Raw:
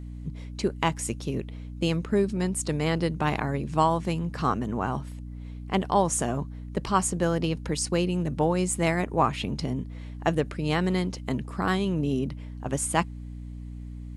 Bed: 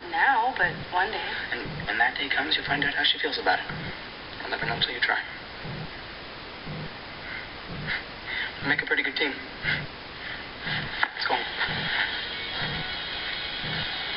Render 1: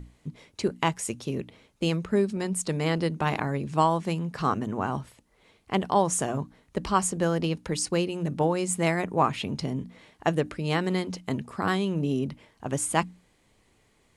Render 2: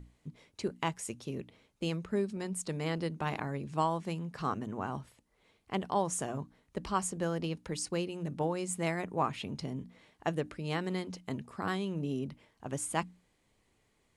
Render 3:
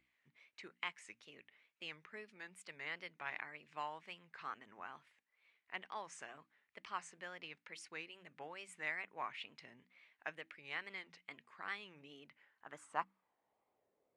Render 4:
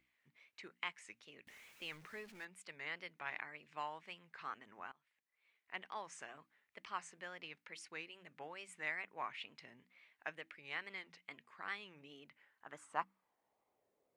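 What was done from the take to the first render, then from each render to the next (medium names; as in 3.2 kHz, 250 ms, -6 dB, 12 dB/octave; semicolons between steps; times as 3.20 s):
hum notches 60/120/180/240/300 Hz
trim -8 dB
band-pass sweep 2.1 kHz -> 510 Hz, 12.26–14.11 s; wow and flutter 130 cents
1.47–2.45 s: jump at every zero crossing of -56 dBFS; 4.92–5.81 s: fade in, from -24 dB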